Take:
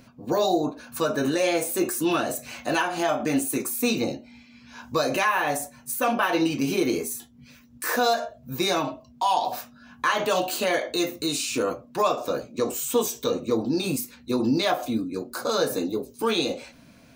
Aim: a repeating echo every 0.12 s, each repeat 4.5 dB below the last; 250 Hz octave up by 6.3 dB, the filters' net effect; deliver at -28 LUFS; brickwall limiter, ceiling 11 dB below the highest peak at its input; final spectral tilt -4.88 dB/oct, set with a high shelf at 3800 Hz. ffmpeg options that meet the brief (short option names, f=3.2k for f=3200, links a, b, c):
-af "equalizer=f=250:t=o:g=8,highshelf=f=3.8k:g=-7.5,alimiter=limit=-17dB:level=0:latency=1,aecho=1:1:120|240|360|480|600|720|840|960|1080:0.596|0.357|0.214|0.129|0.0772|0.0463|0.0278|0.0167|0.01,volume=-3dB"